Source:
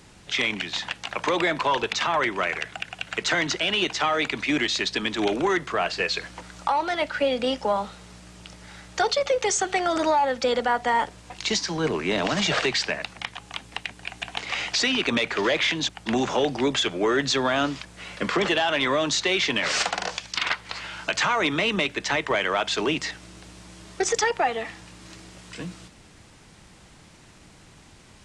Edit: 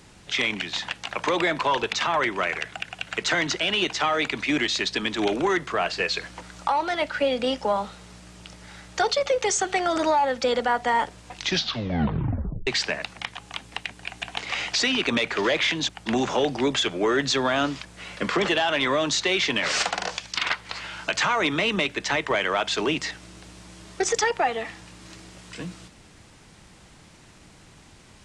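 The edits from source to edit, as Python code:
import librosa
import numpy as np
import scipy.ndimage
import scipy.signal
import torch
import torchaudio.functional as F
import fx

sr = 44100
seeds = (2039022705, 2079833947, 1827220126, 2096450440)

y = fx.edit(x, sr, fx.tape_stop(start_s=11.34, length_s=1.33), tone=tone)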